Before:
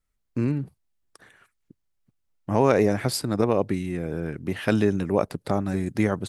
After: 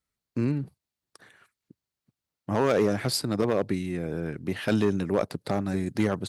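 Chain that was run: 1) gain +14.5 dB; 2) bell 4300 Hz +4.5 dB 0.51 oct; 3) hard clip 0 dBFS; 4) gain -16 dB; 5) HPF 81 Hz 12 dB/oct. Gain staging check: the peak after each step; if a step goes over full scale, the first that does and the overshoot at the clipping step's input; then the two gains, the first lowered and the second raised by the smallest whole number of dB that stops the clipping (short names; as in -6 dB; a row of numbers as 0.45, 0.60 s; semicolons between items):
+8.0, +8.5, 0.0, -16.0, -13.0 dBFS; step 1, 8.5 dB; step 1 +5.5 dB, step 4 -7 dB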